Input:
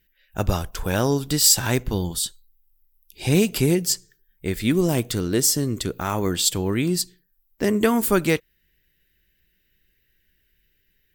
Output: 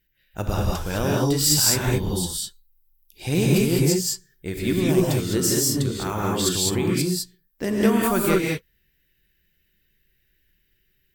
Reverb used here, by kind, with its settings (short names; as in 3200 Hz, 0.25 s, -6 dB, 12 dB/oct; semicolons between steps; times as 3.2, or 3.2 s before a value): non-linear reverb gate 0.23 s rising, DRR -3 dB; gain -5 dB